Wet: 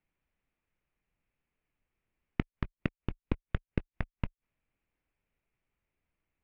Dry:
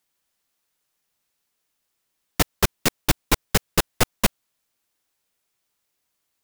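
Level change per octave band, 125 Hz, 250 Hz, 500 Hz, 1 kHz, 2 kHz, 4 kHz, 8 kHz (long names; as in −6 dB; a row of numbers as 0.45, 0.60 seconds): −8.5 dB, −9.5 dB, −16.0 dB, −20.0 dB, −17.5 dB, −28.0 dB, below −40 dB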